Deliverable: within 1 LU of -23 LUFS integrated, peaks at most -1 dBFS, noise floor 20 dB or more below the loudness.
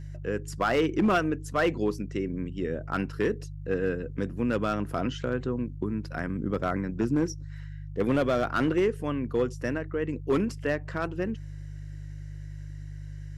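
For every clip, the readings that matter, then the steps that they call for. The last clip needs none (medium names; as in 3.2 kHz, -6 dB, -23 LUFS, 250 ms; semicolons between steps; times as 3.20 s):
clipped samples 0.7%; clipping level -18.0 dBFS; hum 50 Hz; highest harmonic 150 Hz; hum level -37 dBFS; loudness -29.0 LUFS; peak level -18.0 dBFS; loudness target -23.0 LUFS
-> clip repair -18 dBFS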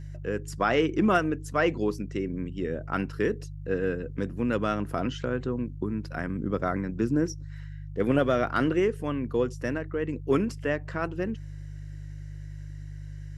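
clipped samples 0.0%; hum 50 Hz; highest harmonic 150 Hz; hum level -36 dBFS
-> de-hum 50 Hz, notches 3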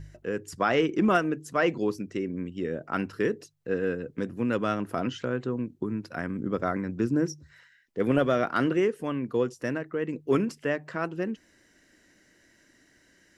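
hum not found; loudness -29.0 LUFS; peak level -10.5 dBFS; loudness target -23.0 LUFS
-> trim +6 dB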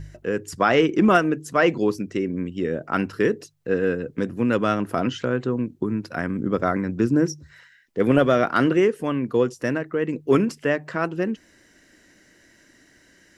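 loudness -22.5 LUFS; peak level -4.5 dBFS; noise floor -57 dBFS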